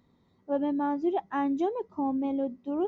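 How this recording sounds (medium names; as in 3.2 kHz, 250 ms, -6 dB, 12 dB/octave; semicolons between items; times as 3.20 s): noise floor -67 dBFS; spectral tilt -2.0 dB/octave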